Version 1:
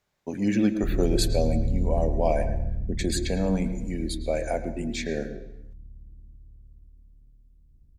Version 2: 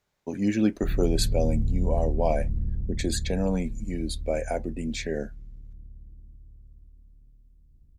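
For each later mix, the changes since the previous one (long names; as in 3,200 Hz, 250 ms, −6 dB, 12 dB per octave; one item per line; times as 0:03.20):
reverb: off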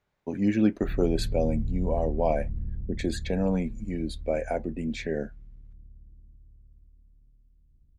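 background −5.5 dB
master: add bass and treble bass +1 dB, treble −11 dB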